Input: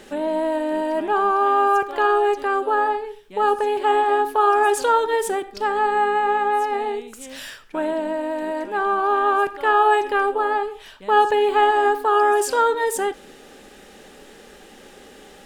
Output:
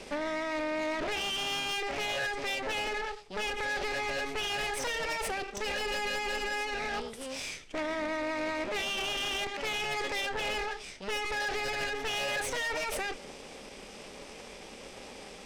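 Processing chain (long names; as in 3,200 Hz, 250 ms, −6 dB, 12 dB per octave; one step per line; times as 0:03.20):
lower of the sound and its delayed copy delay 0.48 ms
low-pass filter 6,200 Hz 24 dB per octave
high-shelf EQ 4,400 Hz +4 dB
brickwall limiter −21.5 dBFS, peak gain reduction 11.5 dB
formants moved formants +5 semitones
soft clipping −29 dBFS, distortion −11 dB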